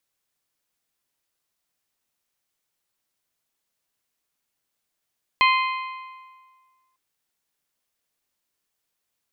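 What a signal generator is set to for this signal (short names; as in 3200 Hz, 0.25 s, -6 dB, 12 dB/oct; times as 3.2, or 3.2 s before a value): metal hit bell, lowest mode 1040 Hz, modes 5, decay 1.68 s, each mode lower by 3 dB, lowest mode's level -15 dB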